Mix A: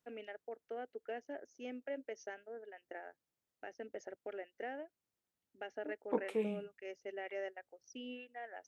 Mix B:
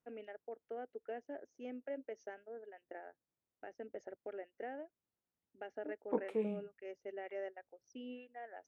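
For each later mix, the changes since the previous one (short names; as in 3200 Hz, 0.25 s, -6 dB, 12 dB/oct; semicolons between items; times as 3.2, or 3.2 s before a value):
master: add high shelf 2100 Hz -11.5 dB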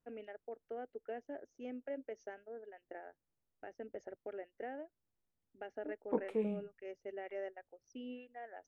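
master: remove HPF 160 Hz 6 dB/oct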